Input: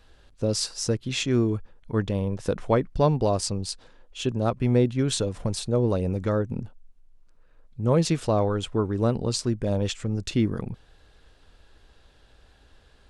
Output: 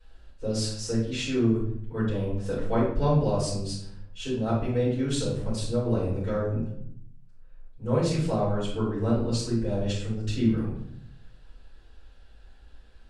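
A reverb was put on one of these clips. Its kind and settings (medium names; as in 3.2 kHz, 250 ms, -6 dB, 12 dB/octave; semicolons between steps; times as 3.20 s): simulated room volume 120 m³, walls mixed, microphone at 4.7 m; trim -18 dB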